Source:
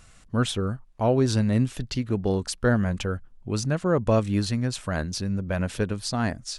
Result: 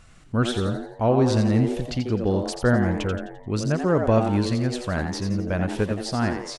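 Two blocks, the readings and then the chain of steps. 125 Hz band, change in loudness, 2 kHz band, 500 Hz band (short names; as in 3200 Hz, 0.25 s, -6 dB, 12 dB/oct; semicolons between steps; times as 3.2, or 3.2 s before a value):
+1.5 dB, +2.5 dB, +2.0 dB, +3.0 dB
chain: high shelf 5800 Hz -8.5 dB; frequency-shifting echo 86 ms, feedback 45%, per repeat +120 Hz, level -7.5 dB; gain +1.5 dB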